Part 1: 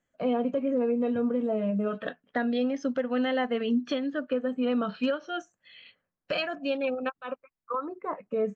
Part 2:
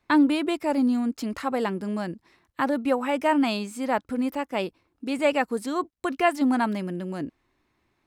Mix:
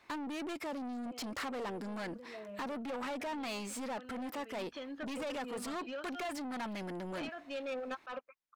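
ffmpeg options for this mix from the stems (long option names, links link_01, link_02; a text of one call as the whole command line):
ffmpeg -i stem1.wav -i stem2.wav -filter_complex "[0:a]adelay=850,volume=-13dB,afade=type=in:start_time=4.4:duration=0.51:silence=0.316228[link_01];[1:a]alimiter=limit=-16dB:level=0:latency=1:release=28,acompressor=threshold=-32dB:ratio=3,aeval=exprs='(tanh(89.1*val(0)+0.3)-tanh(0.3))/89.1':channel_layout=same,volume=-0.5dB,asplit=2[link_02][link_03];[link_03]apad=whole_len=414611[link_04];[link_01][link_04]sidechaincompress=threshold=-49dB:ratio=10:attack=6.8:release=612[link_05];[link_05][link_02]amix=inputs=2:normalize=0,asplit=2[link_06][link_07];[link_07]highpass=frequency=720:poles=1,volume=18dB,asoftclip=type=tanh:threshold=-32dB[link_08];[link_06][link_08]amix=inputs=2:normalize=0,lowpass=frequency=5500:poles=1,volume=-6dB" out.wav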